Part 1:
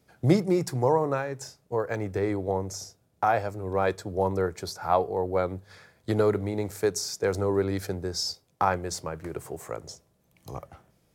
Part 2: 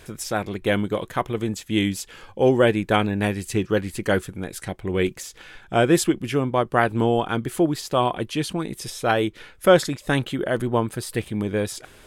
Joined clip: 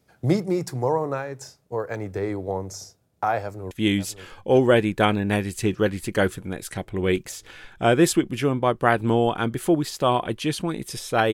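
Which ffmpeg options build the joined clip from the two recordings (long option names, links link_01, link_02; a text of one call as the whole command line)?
ffmpeg -i cue0.wav -i cue1.wav -filter_complex "[0:a]apad=whole_dur=11.33,atrim=end=11.33,atrim=end=3.712[link_01];[1:a]atrim=start=1.618:end=9.24[link_02];[link_01][link_02]acrossfade=duration=0.004:curve1=hsin:curve2=hsin,asplit=2[link_03][link_04];[link_04]afade=type=in:start_time=3.42:duration=0.01,afade=type=out:start_time=3.71:duration=0.01,aecho=0:1:550|1100|1650|2200|2750|3300|3850|4400|4950|5500|6050|6600:0.266073|0.199554|0.149666|0.112249|0.084187|0.0631403|0.0473552|0.0355164|0.0266373|0.019978|0.0149835|0.0112376[link_05];[link_03][link_05]amix=inputs=2:normalize=0" out.wav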